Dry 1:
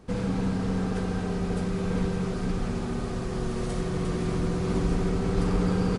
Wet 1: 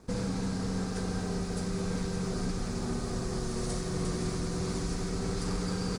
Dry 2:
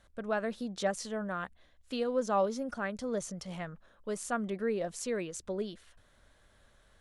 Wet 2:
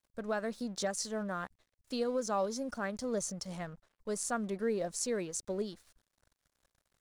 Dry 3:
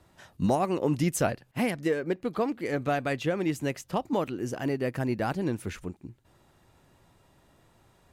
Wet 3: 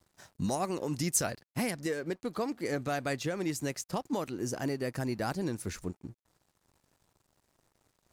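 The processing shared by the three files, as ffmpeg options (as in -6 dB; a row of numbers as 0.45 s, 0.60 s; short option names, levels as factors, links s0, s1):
-filter_complex "[0:a]acrossover=split=1400[s0][s1];[s0]alimiter=limit=0.0631:level=0:latency=1:release=312[s2];[s1]aexciter=amount=7:drive=3.8:freq=4300[s3];[s2][s3]amix=inputs=2:normalize=0,aemphasis=mode=reproduction:type=75kf,aeval=exprs='sgn(val(0))*max(abs(val(0))-0.00112,0)':c=same"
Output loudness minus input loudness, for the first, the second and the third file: -5.0 LU, -1.0 LU, -4.5 LU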